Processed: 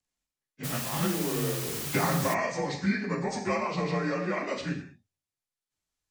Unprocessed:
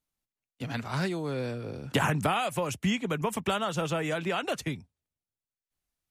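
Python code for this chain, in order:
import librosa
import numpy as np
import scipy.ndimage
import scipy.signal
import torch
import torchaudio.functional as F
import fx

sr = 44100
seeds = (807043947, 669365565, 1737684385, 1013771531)

y = fx.partial_stretch(x, sr, pct=87)
y = fx.rev_gated(y, sr, seeds[0], gate_ms=230, shape='falling', drr_db=2.0)
y = fx.quant_dither(y, sr, seeds[1], bits=6, dither='triangular', at=(0.63, 2.33), fade=0.02)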